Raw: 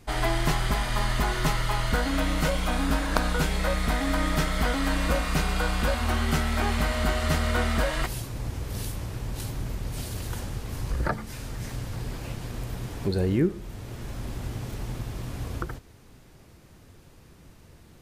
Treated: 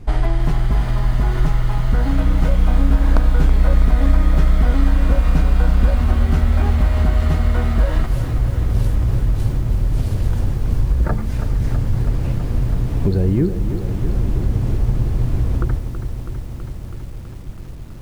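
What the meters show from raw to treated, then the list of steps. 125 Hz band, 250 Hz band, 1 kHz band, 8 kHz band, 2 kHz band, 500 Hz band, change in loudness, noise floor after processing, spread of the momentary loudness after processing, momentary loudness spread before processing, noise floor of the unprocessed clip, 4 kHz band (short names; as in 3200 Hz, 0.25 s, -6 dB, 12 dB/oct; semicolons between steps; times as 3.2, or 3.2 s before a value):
+12.0 dB, +6.5 dB, 0.0 dB, -6.5 dB, -3.0 dB, +3.0 dB, +9.0 dB, -30 dBFS, 11 LU, 10 LU, -52 dBFS, -5.5 dB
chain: tilt -3 dB/oct; compressor 4:1, threshold -19 dBFS, peak gain reduction 9.5 dB; lo-fi delay 0.326 s, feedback 80%, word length 8-bit, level -10 dB; gain +5.5 dB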